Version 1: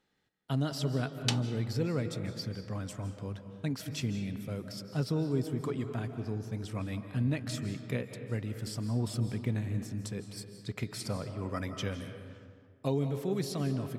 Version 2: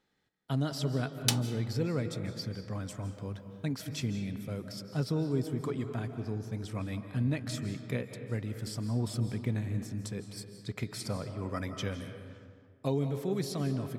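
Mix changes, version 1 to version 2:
background: remove high-frequency loss of the air 83 metres
master: add notch filter 2,800 Hz, Q 17

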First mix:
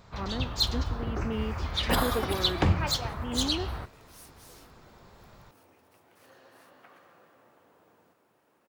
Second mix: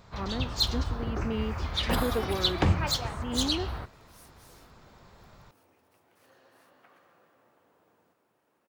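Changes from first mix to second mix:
speech: remove elliptic low-pass filter 3,600 Hz
second sound −4.5 dB

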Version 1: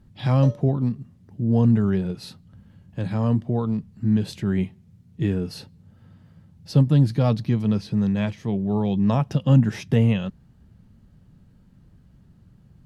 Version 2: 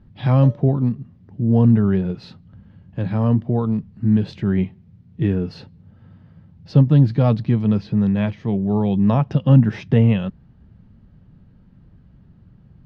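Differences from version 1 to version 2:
speech +4.0 dB
master: add high-frequency loss of the air 220 metres

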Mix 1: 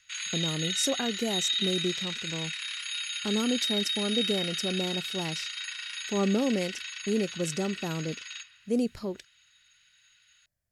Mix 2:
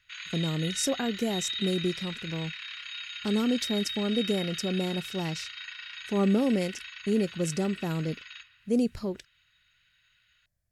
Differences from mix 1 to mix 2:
background: add high-frequency loss of the air 210 metres
master: add low-shelf EQ 150 Hz +7.5 dB

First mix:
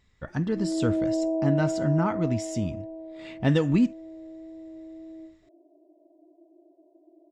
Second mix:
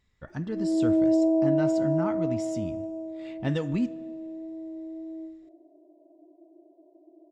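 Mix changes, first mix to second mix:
speech −6.5 dB
reverb: on, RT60 1.9 s

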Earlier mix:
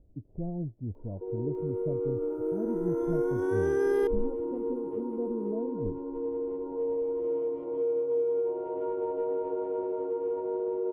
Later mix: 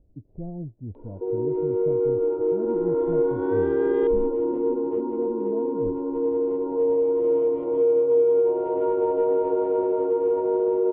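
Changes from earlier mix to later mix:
first sound +9.0 dB
master: add linear-phase brick-wall low-pass 4,000 Hz

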